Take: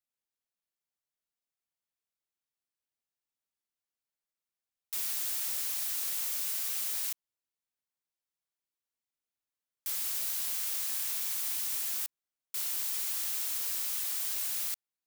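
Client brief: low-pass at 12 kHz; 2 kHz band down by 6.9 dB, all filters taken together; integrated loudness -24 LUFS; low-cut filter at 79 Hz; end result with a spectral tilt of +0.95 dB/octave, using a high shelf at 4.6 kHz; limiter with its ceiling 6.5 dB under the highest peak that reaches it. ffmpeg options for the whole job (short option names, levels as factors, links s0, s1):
-af "highpass=79,lowpass=12000,equalizer=f=2000:t=o:g=-7,highshelf=f=4600:g=-9,volume=12.6,alimiter=limit=0.15:level=0:latency=1"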